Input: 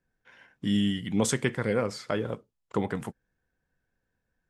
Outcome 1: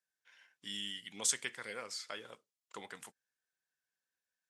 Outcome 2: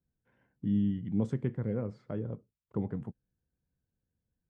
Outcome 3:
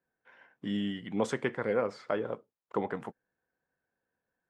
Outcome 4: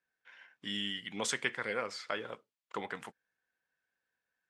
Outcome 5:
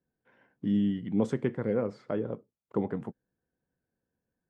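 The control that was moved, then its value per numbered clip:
band-pass, frequency: 7000, 100, 760, 2500, 290 Hz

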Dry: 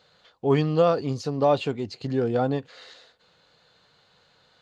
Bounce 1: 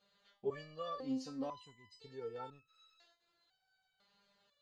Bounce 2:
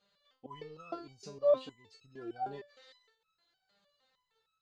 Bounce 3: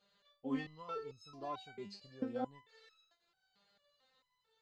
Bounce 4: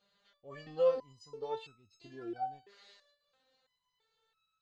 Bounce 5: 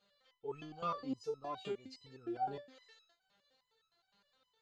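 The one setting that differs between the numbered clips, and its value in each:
stepped resonator, rate: 2, 6.5, 4.5, 3, 9.7 Hz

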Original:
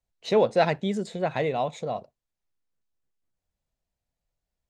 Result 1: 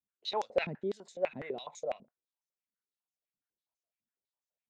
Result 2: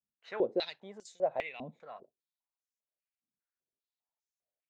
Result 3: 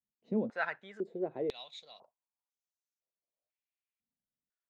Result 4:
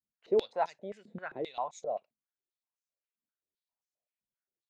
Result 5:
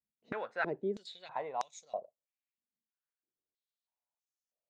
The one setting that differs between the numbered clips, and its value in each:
stepped band-pass, rate: 12, 5, 2, 7.6, 3.1 Hz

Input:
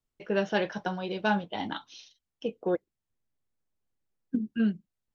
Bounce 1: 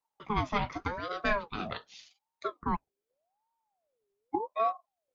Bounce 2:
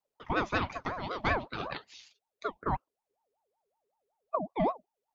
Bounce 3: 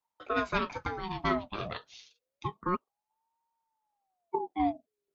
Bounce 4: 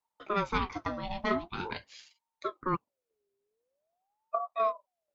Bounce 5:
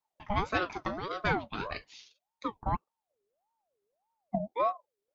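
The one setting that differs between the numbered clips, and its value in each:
ring modulator with a swept carrier, at: 0.85, 5.3, 0.29, 0.45, 1.7 Hz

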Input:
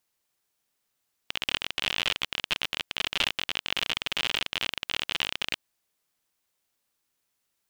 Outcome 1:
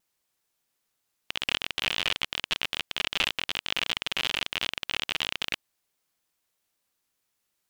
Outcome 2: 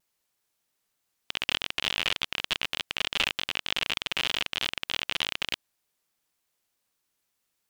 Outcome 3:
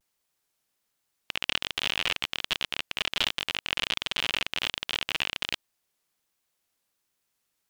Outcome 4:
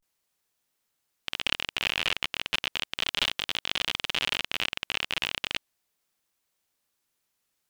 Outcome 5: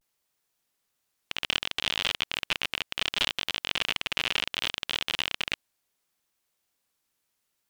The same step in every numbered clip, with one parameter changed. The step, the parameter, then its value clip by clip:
vibrato, rate: 5.2, 3.3, 1.3, 0.36, 0.67 Hz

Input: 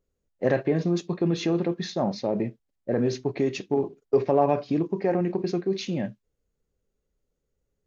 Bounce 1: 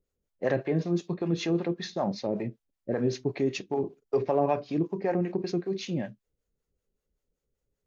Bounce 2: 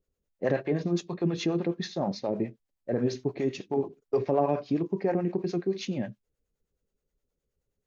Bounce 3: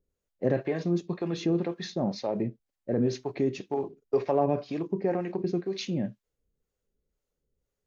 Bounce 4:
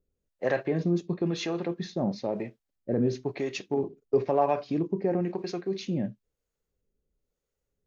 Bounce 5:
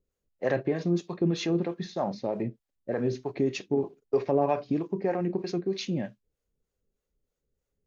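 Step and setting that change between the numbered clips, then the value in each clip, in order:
harmonic tremolo, rate: 5.2, 9.5, 2, 1, 3.2 Hz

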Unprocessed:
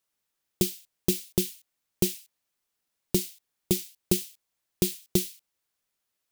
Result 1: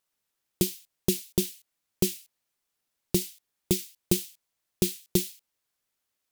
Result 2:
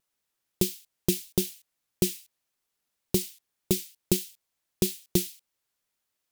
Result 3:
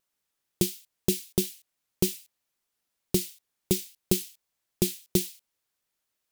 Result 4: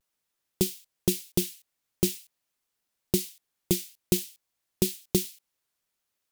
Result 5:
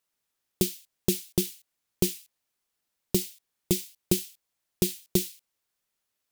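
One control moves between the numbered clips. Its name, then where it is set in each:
vibrato, rate: 9.4, 1.7, 3, 0.47, 15 Hz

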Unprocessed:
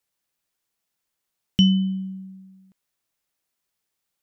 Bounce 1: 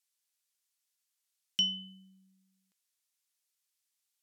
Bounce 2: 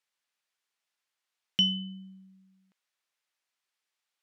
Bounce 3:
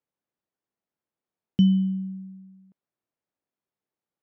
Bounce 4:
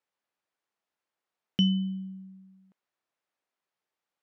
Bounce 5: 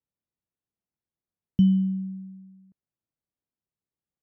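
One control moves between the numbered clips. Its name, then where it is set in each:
band-pass, frequency: 7800, 2200, 300, 790, 110 Hz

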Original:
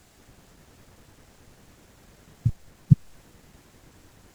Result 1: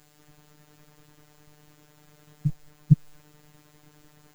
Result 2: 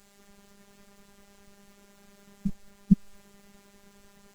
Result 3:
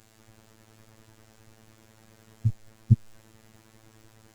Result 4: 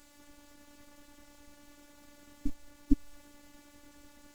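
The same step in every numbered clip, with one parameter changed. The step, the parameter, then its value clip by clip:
robotiser, frequency: 150, 200, 110, 290 Hz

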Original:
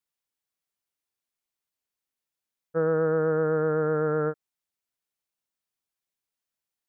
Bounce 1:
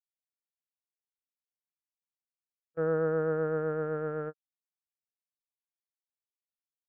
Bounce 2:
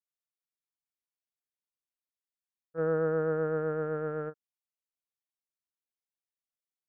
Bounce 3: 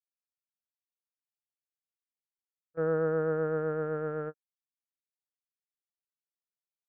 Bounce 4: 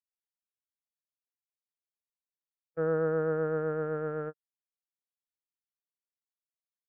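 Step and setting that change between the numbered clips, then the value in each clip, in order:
gate, range: -40, -14, -27, -53 dB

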